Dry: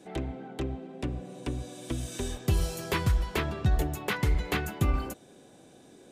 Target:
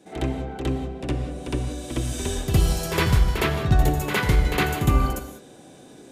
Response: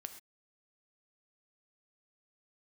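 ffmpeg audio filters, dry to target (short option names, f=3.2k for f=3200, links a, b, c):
-filter_complex "[0:a]asplit=2[a][b];[1:a]atrim=start_sample=2205,asetrate=29988,aresample=44100,adelay=62[c];[b][c]afir=irnorm=-1:irlink=0,volume=10dB[d];[a][d]amix=inputs=2:normalize=0,volume=-1dB"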